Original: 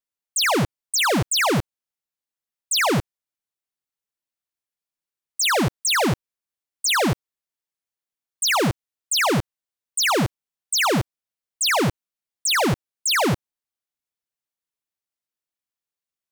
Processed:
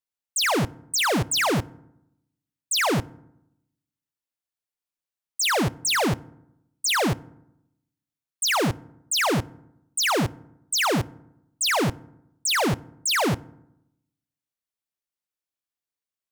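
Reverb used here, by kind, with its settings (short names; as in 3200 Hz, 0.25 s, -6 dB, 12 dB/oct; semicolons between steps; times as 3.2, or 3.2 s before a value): FDN reverb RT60 0.82 s, low-frequency decay 1.25×, high-frequency decay 0.5×, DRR 18.5 dB; gain -2.5 dB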